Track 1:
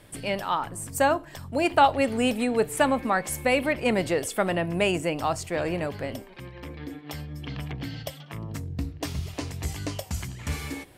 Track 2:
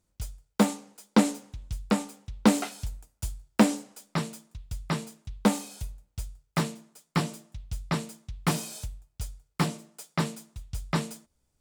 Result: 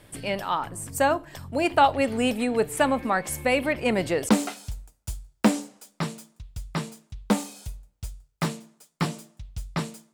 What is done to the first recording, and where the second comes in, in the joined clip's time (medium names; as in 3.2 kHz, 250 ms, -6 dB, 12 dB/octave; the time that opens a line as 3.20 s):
track 1
4.29 s: go over to track 2 from 2.44 s